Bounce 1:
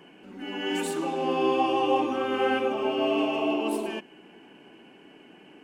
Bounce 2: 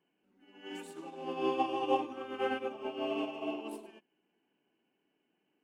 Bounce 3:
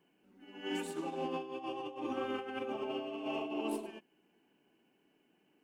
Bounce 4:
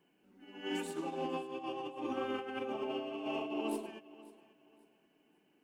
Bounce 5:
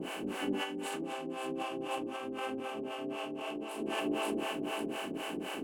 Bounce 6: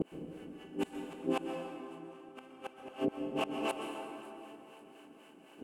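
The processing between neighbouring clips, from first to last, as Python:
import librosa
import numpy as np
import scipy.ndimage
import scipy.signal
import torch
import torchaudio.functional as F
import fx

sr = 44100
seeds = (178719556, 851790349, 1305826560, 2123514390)

y1 = fx.upward_expand(x, sr, threshold_db=-36.0, expansion=2.5)
y1 = F.gain(torch.from_numpy(y1), -4.0).numpy()
y2 = fx.low_shelf(y1, sr, hz=210.0, db=4.0)
y2 = fx.over_compress(y2, sr, threshold_db=-40.0, ratio=-1.0)
y2 = F.gain(torch.from_numpy(y2), 1.0).numpy()
y3 = fx.echo_feedback(y2, sr, ms=539, feedback_pct=30, wet_db=-19.0)
y4 = fx.bin_compress(y3, sr, power=0.4)
y4 = fx.over_compress(y4, sr, threshold_db=-40.0, ratio=-1.0)
y4 = fx.harmonic_tremolo(y4, sr, hz=3.9, depth_pct=100, crossover_hz=480.0)
y4 = F.gain(torch.from_numpy(y4), 8.0).numpy()
y5 = fx.gate_flip(y4, sr, shuts_db=-30.0, range_db=-30)
y5 = fx.rev_plate(y5, sr, seeds[0], rt60_s=2.7, hf_ratio=0.55, predelay_ms=110, drr_db=3.5)
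y5 = F.gain(torch.from_numpy(y5), 9.0).numpy()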